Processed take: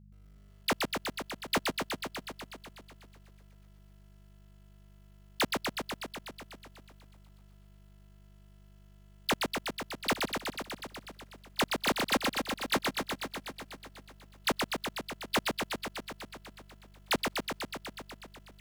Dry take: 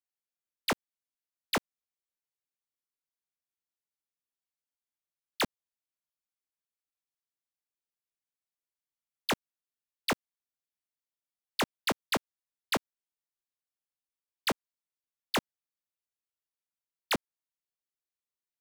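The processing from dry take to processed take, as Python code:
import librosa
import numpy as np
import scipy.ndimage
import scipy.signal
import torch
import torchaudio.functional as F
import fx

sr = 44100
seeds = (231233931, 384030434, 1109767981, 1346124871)

y = fx.dmg_buzz(x, sr, base_hz=50.0, harmonics=4, level_db=-56.0, tilt_db=-3, odd_only=False)
y = fx.echo_crushed(y, sr, ms=123, feedback_pct=80, bits=11, wet_db=-3.5)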